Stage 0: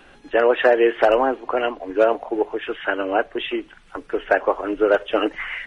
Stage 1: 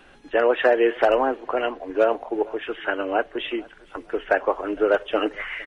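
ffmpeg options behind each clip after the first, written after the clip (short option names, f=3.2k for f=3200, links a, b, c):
-filter_complex "[0:a]asplit=2[a][b];[b]adelay=459,lowpass=f=3.2k:p=1,volume=-24dB,asplit=2[c][d];[d]adelay=459,lowpass=f=3.2k:p=1,volume=0.4,asplit=2[e][f];[f]adelay=459,lowpass=f=3.2k:p=1,volume=0.4[g];[a][c][e][g]amix=inputs=4:normalize=0,volume=-2.5dB"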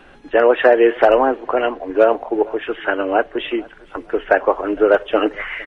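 -af "highshelf=f=3.3k:g=-8,volume=6.5dB"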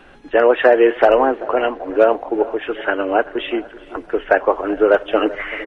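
-filter_complex "[0:a]asplit=2[a][b];[b]adelay=385,lowpass=f=1.7k:p=1,volume=-17dB,asplit=2[c][d];[d]adelay=385,lowpass=f=1.7k:p=1,volume=0.48,asplit=2[e][f];[f]adelay=385,lowpass=f=1.7k:p=1,volume=0.48,asplit=2[g][h];[h]adelay=385,lowpass=f=1.7k:p=1,volume=0.48[i];[a][c][e][g][i]amix=inputs=5:normalize=0"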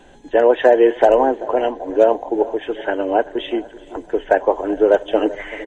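-af "superequalizer=10b=0.251:11b=0.562:12b=0.447:14b=0.708:15b=3.16"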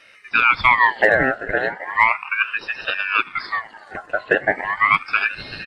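-af "aeval=exprs='val(0)*sin(2*PI*1600*n/s+1600*0.35/0.36*sin(2*PI*0.36*n/s))':c=same"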